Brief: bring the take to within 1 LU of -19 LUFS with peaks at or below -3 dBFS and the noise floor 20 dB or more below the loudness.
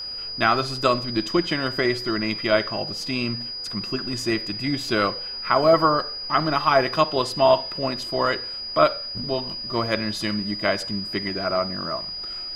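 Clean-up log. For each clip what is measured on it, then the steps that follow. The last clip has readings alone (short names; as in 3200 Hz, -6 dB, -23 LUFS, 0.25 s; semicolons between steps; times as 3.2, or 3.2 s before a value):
steady tone 4900 Hz; tone level -30 dBFS; loudness -23.0 LUFS; peak -4.0 dBFS; loudness target -19.0 LUFS
-> notch 4900 Hz, Q 30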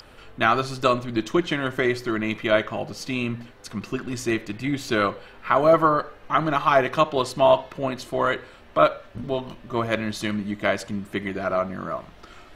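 steady tone none; loudness -24.0 LUFS; peak -4.5 dBFS; loudness target -19.0 LUFS
-> gain +5 dB; limiter -3 dBFS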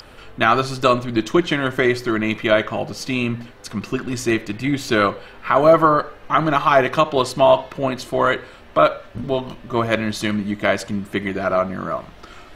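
loudness -19.5 LUFS; peak -3.0 dBFS; noise floor -43 dBFS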